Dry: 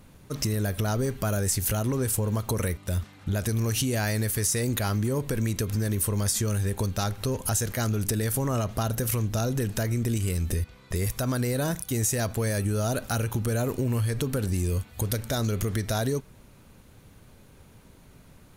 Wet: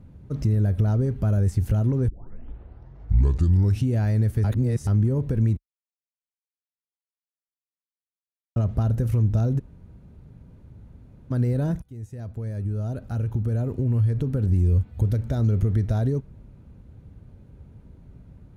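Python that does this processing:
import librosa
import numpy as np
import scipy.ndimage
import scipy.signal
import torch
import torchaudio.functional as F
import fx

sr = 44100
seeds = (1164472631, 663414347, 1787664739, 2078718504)

y = fx.edit(x, sr, fx.tape_start(start_s=2.08, length_s=1.8),
    fx.reverse_span(start_s=4.44, length_s=0.43),
    fx.silence(start_s=5.57, length_s=2.99),
    fx.room_tone_fill(start_s=9.59, length_s=1.72, crossfade_s=0.02),
    fx.fade_in_from(start_s=11.82, length_s=3.74, curve='qsin', floor_db=-19.0), tone=tone)
y = scipy.signal.sosfilt(scipy.signal.butter(2, 52.0, 'highpass', fs=sr, output='sos'), y)
y = fx.tilt_eq(y, sr, slope=-4.5)
y = fx.notch(y, sr, hz=1100.0, q=18.0)
y = y * librosa.db_to_amplitude(-6.5)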